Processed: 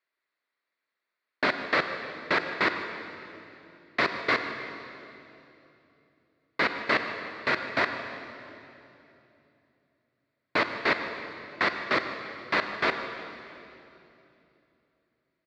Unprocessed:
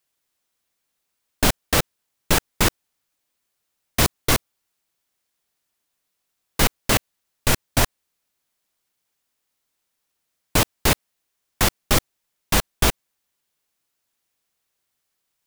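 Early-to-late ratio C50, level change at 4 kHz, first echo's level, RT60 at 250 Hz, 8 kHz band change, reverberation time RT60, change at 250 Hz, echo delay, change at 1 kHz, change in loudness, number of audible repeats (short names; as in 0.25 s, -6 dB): 6.5 dB, -9.5 dB, -15.5 dB, 3.7 s, under -30 dB, 3.0 s, -8.0 dB, 0.152 s, -2.0 dB, -7.0 dB, 1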